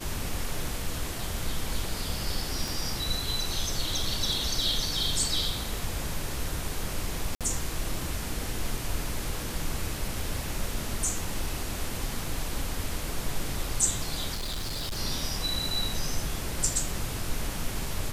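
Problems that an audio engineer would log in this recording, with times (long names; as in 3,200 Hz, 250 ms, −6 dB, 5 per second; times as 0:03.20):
0:02.68: click
0:07.35–0:07.41: drop-out 57 ms
0:14.34–0:14.99: clipping −29 dBFS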